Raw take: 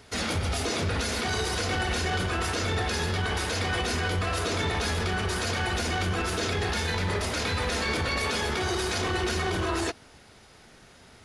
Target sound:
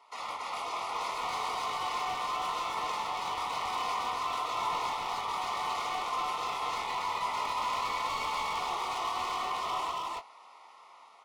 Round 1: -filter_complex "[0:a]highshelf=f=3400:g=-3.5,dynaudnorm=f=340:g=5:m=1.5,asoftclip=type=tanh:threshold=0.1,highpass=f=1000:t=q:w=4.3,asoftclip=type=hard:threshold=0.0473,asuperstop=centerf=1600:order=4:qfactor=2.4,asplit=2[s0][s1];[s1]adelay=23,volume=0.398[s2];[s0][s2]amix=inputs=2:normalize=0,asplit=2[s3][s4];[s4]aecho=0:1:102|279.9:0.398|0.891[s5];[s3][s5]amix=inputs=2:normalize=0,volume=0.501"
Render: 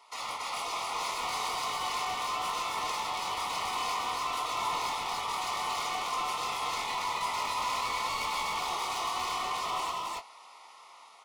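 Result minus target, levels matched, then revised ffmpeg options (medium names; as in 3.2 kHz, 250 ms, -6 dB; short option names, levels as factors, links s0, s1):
8 kHz band +5.5 dB
-filter_complex "[0:a]highshelf=f=3400:g=-14.5,dynaudnorm=f=340:g=5:m=1.5,asoftclip=type=tanh:threshold=0.1,highpass=f=1000:t=q:w=4.3,asoftclip=type=hard:threshold=0.0473,asuperstop=centerf=1600:order=4:qfactor=2.4,asplit=2[s0][s1];[s1]adelay=23,volume=0.398[s2];[s0][s2]amix=inputs=2:normalize=0,asplit=2[s3][s4];[s4]aecho=0:1:102|279.9:0.398|0.891[s5];[s3][s5]amix=inputs=2:normalize=0,volume=0.501"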